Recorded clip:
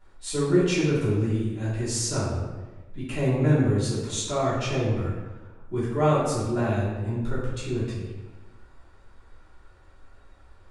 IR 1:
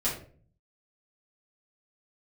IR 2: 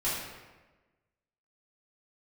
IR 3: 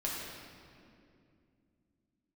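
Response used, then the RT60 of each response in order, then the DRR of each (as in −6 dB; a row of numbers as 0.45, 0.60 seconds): 2; 0.45, 1.2, 2.5 seconds; −8.5, −11.5, −5.5 decibels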